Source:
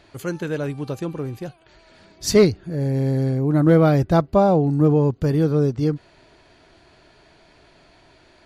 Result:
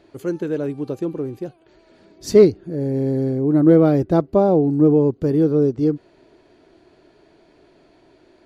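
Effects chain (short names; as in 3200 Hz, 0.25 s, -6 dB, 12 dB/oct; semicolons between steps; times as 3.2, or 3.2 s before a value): bell 350 Hz +13 dB 1.7 oct; gain -7.5 dB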